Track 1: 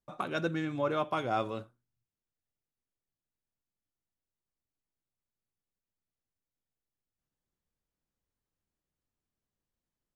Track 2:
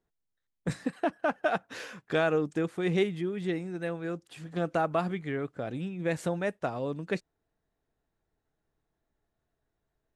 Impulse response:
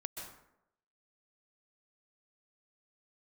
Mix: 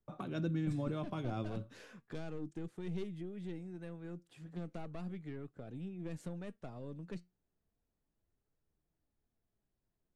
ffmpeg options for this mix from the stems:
-filter_complex "[0:a]highshelf=frequency=3500:gain=-9.5,volume=1dB[link_01];[1:a]aeval=exprs='(tanh(15.8*val(0)+0.25)-tanh(0.25))/15.8':channel_layout=same,volume=-9dB[link_02];[link_01][link_02]amix=inputs=2:normalize=0,lowshelf=frequency=480:gain=8,acrossover=split=270|3000[link_03][link_04][link_05];[link_04]acompressor=threshold=-48dB:ratio=2[link_06];[link_03][link_06][link_05]amix=inputs=3:normalize=0,flanger=delay=2.1:depth=3.8:regen=85:speed=0.35:shape=triangular"

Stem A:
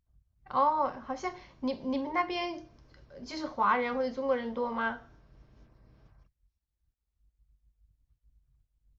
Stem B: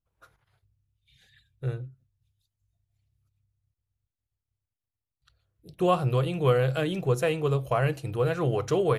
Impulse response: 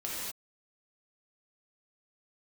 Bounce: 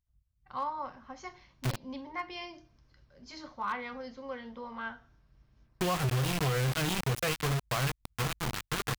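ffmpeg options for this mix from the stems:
-filter_complex "[0:a]volume=-4.5dB[link_01];[1:a]dynaudnorm=framelen=570:gausssize=7:maxgain=15dB,aeval=exprs='val(0)*gte(abs(val(0)),0.106)':channel_layout=same,acompressor=threshold=-20dB:ratio=6,volume=1.5dB[link_02];[link_01][link_02]amix=inputs=2:normalize=0,equalizer=frequency=470:width=0.65:gain=-8,volume=26dB,asoftclip=hard,volume=-26dB"

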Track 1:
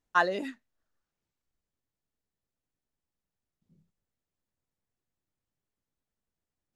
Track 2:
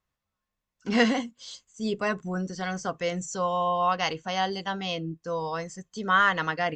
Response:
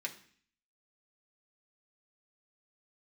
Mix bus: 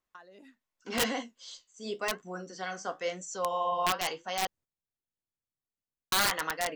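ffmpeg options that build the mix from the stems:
-filter_complex "[0:a]alimiter=limit=-15dB:level=0:latency=1:release=235,acompressor=threshold=-41dB:ratio=4,volume=0.5dB[link_01];[1:a]highpass=340,flanger=delay=9.3:depth=9.2:regen=-57:speed=0.9:shape=triangular,aeval=exprs='(mod(9.44*val(0)+1,2)-1)/9.44':channel_layout=same,volume=0dB,asplit=3[link_02][link_03][link_04];[link_02]atrim=end=4.47,asetpts=PTS-STARTPTS,afade=type=out:start_time=4.466:duration=0.004:curve=hsin[link_05];[link_03]atrim=start=4.47:end=6.12,asetpts=PTS-STARTPTS,volume=0[link_06];[link_04]atrim=start=6.12,asetpts=PTS-STARTPTS,afade=type=in:duration=0.004:curve=hsin[link_07];[link_05][link_06][link_07]concat=n=3:v=0:a=1,asplit=2[link_08][link_09];[link_09]apad=whole_len=297949[link_10];[link_01][link_10]sidechaingate=range=-11dB:threshold=-54dB:ratio=16:detection=peak[link_11];[link_11][link_08]amix=inputs=2:normalize=0"

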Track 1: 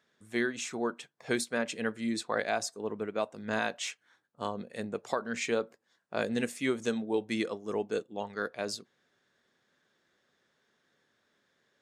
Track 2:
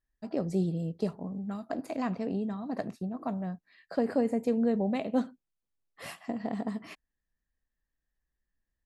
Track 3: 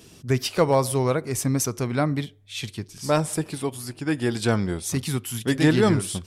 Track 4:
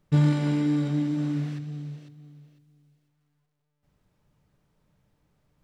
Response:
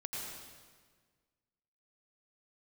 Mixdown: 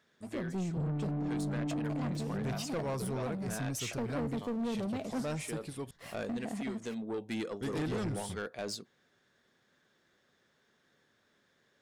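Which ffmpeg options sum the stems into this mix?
-filter_complex "[0:a]acompressor=threshold=-35dB:ratio=2,volume=1.5dB[link_01];[1:a]aeval=exprs='sgn(val(0))*max(abs(val(0))-0.00266,0)':channel_layout=same,volume=-4dB,asplit=2[link_02][link_03];[2:a]acompressor=mode=upward:threshold=-32dB:ratio=2.5,adelay=2150,volume=-12.5dB,asplit=3[link_04][link_05][link_06];[link_04]atrim=end=5.91,asetpts=PTS-STARTPTS,afade=type=out:start_time=5.906:duration=0.004:curve=hsin[link_07];[link_05]atrim=start=5.91:end=7.61,asetpts=PTS-STARTPTS,volume=0[link_08];[link_06]atrim=start=7.61,asetpts=PTS-STARTPTS,afade=type=in:duration=0.004:curve=hsin[link_09];[link_07][link_08][link_09]concat=n=3:v=0:a=1[link_10];[3:a]lowpass=1000,acompressor=threshold=-22dB:ratio=6,adelay=650,volume=-6dB[link_11];[link_03]apad=whole_len=520867[link_12];[link_01][link_12]sidechaincompress=threshold=-40dB:ratio=4:attack=27:release=932[link_13];[link_13][link_02][link_10][link_11]amix=inputs=4:normalize=0,lowshelf=frequency=160:gain=6,asoftclip=type=tanh:threshold=-30.5dB"

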